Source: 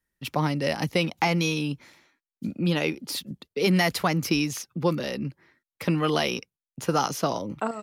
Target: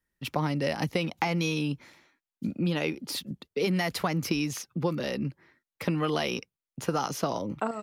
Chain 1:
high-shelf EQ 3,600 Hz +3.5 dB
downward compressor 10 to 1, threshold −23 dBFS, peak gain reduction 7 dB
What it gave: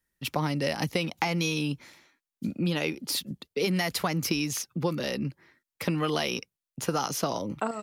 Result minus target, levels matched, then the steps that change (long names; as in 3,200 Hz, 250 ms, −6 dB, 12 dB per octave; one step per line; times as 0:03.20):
8,000 Hz band +4.5 dB
change: high-shelf EQ 3,600 Hz −3.5 dB